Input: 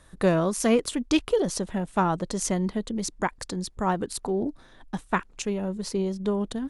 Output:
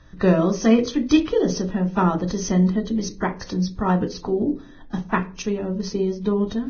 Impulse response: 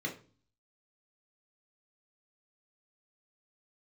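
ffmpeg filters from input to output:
-filter_complex "[0:a]asplit=2[link_01][link_02];[1:a]atrim=start_sample=2205,lowshelf=frequency=250:gain=7.5[link_03];[link_02][link_03]afir=irnorm=-1:irlink=0,volume=-8.5dB[link_04];[link_01][link_04]amix=inputs=2:normalize=0,volume=2dB" -ar 16000 -c:a libvorbis -b:a 16k

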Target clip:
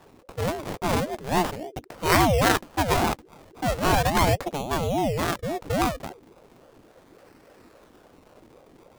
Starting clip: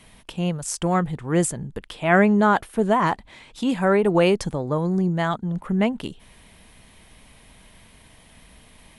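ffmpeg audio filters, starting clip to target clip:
ffmpeg -i in.wav -af "acrusher=samples=25:mix=1:aa=0.000001:lfo=1:lforange=25:lforate=0.37,aeval=exprs='val(0)*sin(2*PI*410*n/s+410*0.35/3.6*sin(2*PI*3.6*n/s))':channel_layout=same" out.wav

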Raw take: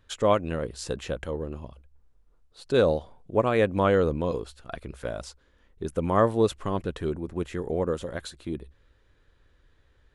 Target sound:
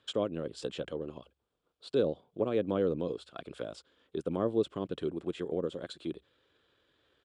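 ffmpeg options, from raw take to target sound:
ffmpeg -i in.wav -filter_complex "[0:a]atempo=1.4,acrossover=split=410[link_01][link_02];[link_02]acompressor=threshold=-43dB:ratio=2.5[link_03];[link_01][link_03]amix=inputs=2:normalize=0,highpass=220,equalizer=frequency=220:width_type=q:width=4:gain=-4,equalizer=frequency=910:width_type=q:width=4:gain=-4,equalizer=frequency=1900:width_type=q:width=4:gain=-6,equalizer=frequency=3300:width_type=q:width=4:gain=7,equalizer=frequency=6200:width_type=q:width=4:gain=-8,lowpass=frequency=8200:width=0.5412,lowpass=frequency=8200:width=1.3066" out.wav

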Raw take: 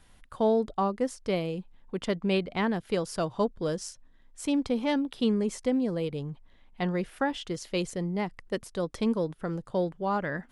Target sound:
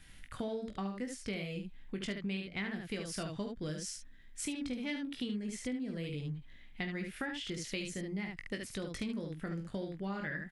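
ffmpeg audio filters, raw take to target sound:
ffmpeg -i in.wav -filter_complex "[0:a]equalizer=frequency=500:width_type=o:width=1:gain=-7,equalizer=frequency=1000:width_type=o:width=1:gain=-11,equalizer=frequency=2000:width_type=o:width=1:gain=7,asplit=2[link_01][link_02];[link_02]aecho=0:1:20|47|72:0.501|0.211|0.531[link_03];[link_01][link_03]amix=inputs=2:normalize=0,acompressor=threshold=-38dB:ratio=5,volume=1.5dB" out.wav

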